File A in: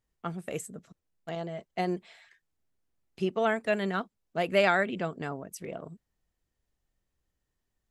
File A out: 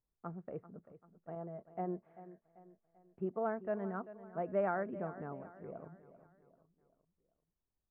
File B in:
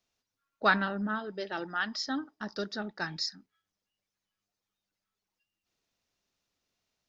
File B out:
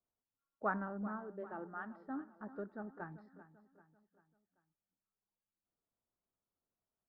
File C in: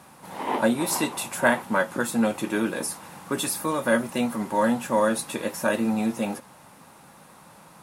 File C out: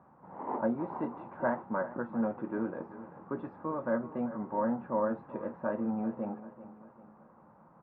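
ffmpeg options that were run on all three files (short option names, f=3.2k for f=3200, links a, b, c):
-af "lowpass=f=1.3k:w=0.5412,lowpass=f=1.3k:w=1.3066,aecho=1:1:390|780|1170|1560:0.178|0.0818|0.0376|0.0173,volume=-8.5dB"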